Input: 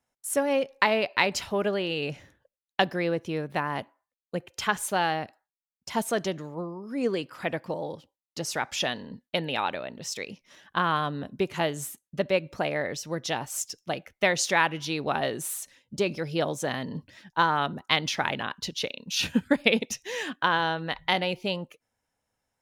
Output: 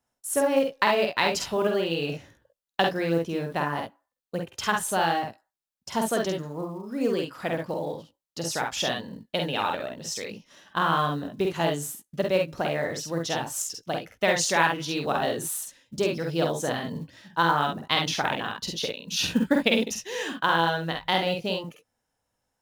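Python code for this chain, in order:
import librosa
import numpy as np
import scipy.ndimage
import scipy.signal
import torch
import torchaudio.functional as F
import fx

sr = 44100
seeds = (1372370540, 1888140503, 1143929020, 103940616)

y = fx.peak_eq(x, sr, hz=2200.0, db=-5.0, octaves=0.46)
y = fx.room_early_taps(y, sr, ms=(48, 66), db=(-3.5, -7.5))
y = fx.quant_float(y, sr, bits=4)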